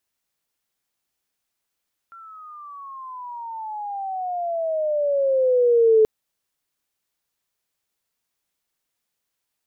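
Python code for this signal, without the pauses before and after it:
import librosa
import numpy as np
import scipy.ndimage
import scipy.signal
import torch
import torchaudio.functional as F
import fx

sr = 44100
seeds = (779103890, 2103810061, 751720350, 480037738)

y = fx.riser_tone(sr, length_s=3.93, level_db=-11, wave='sine', hz=1370.0, rise_st=-20.0, swell_db=29.0)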